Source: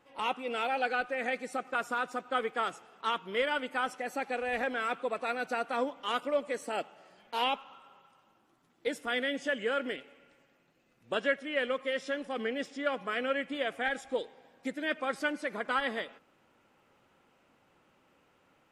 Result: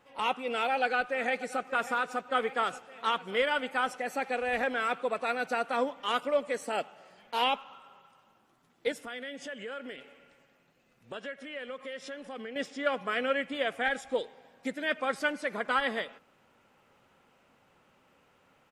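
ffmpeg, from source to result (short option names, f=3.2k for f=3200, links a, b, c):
-filter_complex "[0:a]asplit=2[a][b];[b]afade=t=in:st=0.55:d=0.01,afade=t=out:st=1.6:d=0.01,aecho=0:1:590|1180|1770|2360|2950|3540|4130|4720|5310|5900:0.158489|0.118867|0.0891502|0.0668627|0.050147|0.0376103|0.0282077|0.0211558|0.0158668|0.0119001[c];[a][c]amix=inputs=2:normalize=0,asettb=1/sr,asplit=3[d][e][f];[d]atrim=end=8.924[g];[e]atrim=start=8.92:end=12.56,asetpts=PTS-STARTPTS,afade=t=in:d=0.004:c=qsin,afade=t=out:st=3.636:d=0.004:c=qsin,acompressor=threshold=-42dB:ratio=3:attack=3.2:release=140:knee=1:detection=peak[h];[f]atrim=start=12.556[i];[g][h]acrossfade=d=0.004:c1=hsin:c2=qsin[j];[j][i]acrossfade=d=0.004:c1=qsin:c2=hsin,equalizer=f=320:t=o:w=0.3:g=-6,volume=2.5dB"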